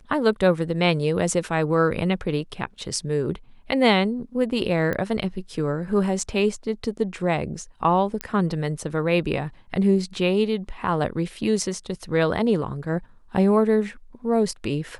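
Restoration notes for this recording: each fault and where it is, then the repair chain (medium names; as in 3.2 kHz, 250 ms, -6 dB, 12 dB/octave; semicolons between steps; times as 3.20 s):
4.93 s: pop -14 dBFS
8.21 s: pop -11 dBFS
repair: de-click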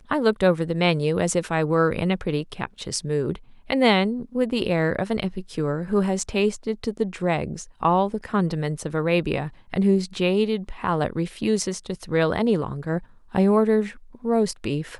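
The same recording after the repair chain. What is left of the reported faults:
nothing left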